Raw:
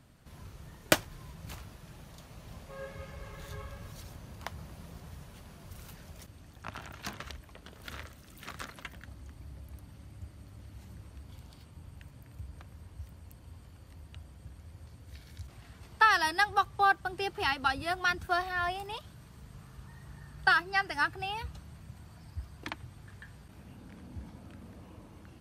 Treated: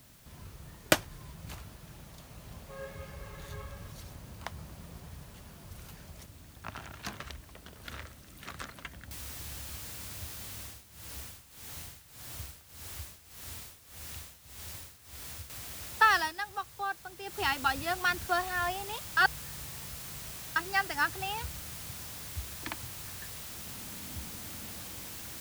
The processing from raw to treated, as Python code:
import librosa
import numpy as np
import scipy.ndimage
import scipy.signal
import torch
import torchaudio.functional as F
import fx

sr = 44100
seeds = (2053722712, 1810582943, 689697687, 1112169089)

y = fx.noise_floor_step(x, sr, seeds[0], at_s=9.11, before_db=-60, after_db=-44, tilt_db=0.0)
y = fx.tremolo(y, sr, hz=1.7, depth=0.82, at=(10.58, 15.5))
y = fx.edit(y, sr, fx.fade_down_up(start_s=16.17, length_s=1.23, db=-10.0, fade_s=0.16),
    fx.reverse_span(start_s=19.17, length_s=1.39), tone=tone)